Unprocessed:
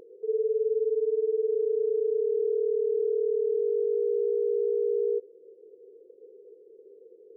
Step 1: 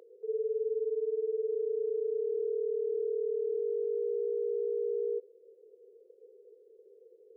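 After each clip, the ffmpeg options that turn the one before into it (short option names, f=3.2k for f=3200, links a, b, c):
-af "highpass=f=420:w=0.5412,highpass=f=420:w=1.3066,volume=-3.5dB"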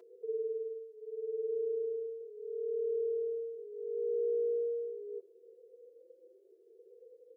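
-filter_complex "[0:a]aecho=1:1:5.9:0.6,asplit=2[a][b];[b]adelay=2.6,afreqshift=0.75[c];[a][c]amix=inputs=2:normalize=1,volume=1dB"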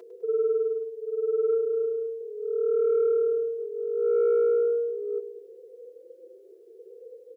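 -filter_complex "[0:a]aecho=1:1:102|204|306|408|510|612:0.282|0.149|0.0792|0.042|0.0222|0.0118,asplit=2[a][b];[b]aeval=exprs='0.0631*sin(PI/2*1.58*val(0)/0.0631)':c=same,volume=-10.5dB[c];[a][c]amix=inputs=2:normalize=0,volume=5.5dB"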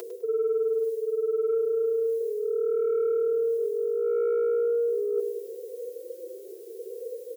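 -af "areverse,acompressor=threshold=-33dB:ratio=6,areverse,crystalizer=i=4.5:c=0,volume=8.5dB"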